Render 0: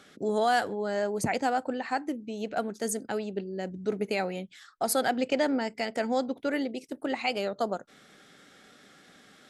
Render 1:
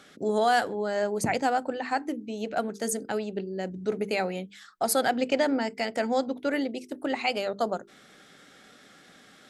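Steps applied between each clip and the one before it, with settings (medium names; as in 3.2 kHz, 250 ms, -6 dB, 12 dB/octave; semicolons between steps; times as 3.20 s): hum notches 50/100/150/200/250/300/350/400/450 Hz; trim +2 dB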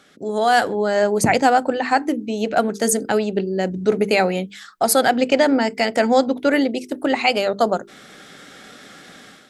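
level rider gain up to 11.5 dB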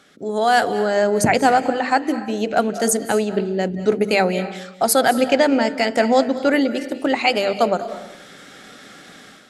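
reverberation RT60 0.75 s, pre-delay 156 ms, DRR 12 dB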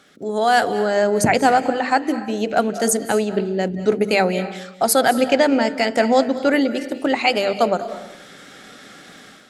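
crackle 10 per s -43 dBFS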